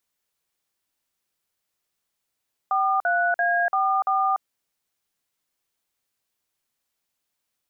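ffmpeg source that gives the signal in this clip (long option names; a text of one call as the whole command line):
ffmpeg -f lavfi -i "aevalsrc='0.0841*clip(min(mod(t,0.34),0.292-mod(t,0.34))/0.002,0,1)*(eq(floor(t/0.34),0)*(sin(2*PI*770*mod(t,0.34))+sin(2*PI*1209*mod(t,0.34)))+eq(floor(t/0.34),1)*(sin(2*PI*697*mod(t,0.34))+sin(2*PI*1477*mod(t,0.34)))+eq(floor(t/0.34),2)*(sin(2*PI*697*mod(t,0.34))+sin(2*PI*1633*mod(t,0.34)))+eq(floor(t/0.34),3)*(sin(2*PI*770*mod(t,0.34))+sin(2*PI*1209*mod(t,0.34)))+eq(floor(t/0.34),4)*(sin(2*PI*770*mod(t,0.34))+sin(2*PI*1209*mod(t,0.34))))':duration=1.7:sample_rate=44100" out.wav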